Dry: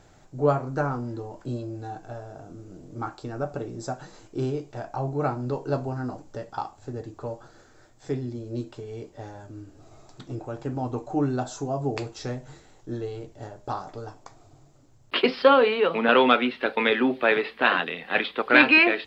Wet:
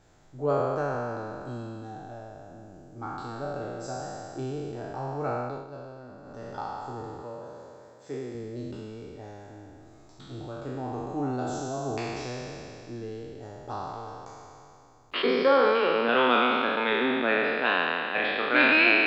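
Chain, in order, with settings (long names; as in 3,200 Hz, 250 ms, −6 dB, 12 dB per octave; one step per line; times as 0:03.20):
peak hold with a decay on every bin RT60 2.76 s
0:05.40–0:06.49: duck −11 dB, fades 0.27 s
0:07.22–0:08.35: high-pass filter 220 Hz 6 dB per octave
0:15.22–0:15.75: parametric band 2,800 Hz −14 dB 0.25 octaves
level −8 dB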